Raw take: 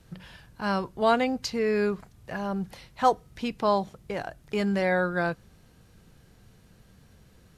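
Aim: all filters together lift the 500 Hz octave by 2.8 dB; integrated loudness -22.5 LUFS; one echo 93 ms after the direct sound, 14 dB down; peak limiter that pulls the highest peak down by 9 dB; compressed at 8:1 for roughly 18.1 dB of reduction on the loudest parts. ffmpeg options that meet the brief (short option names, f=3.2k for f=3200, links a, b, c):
-af "equalizer=f=500:t=o:g=3.5,acompressor=threshold=-34dB:ratio=8,alimiter=level_in=7dB:limit=-24dB:level=0:latency=1,volume=-7dB,aecho=1:1:93:0.2,volume=18.5dB"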